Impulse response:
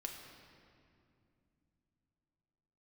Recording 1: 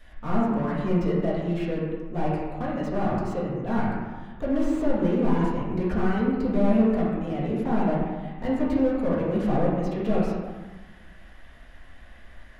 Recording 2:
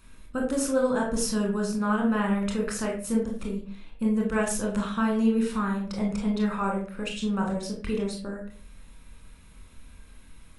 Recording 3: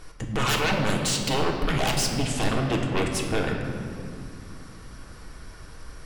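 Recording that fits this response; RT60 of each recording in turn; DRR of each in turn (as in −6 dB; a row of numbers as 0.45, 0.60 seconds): 3; 1.3, 0.45, 2.6 seconds; −8.5, −0.5, 1.0 decibels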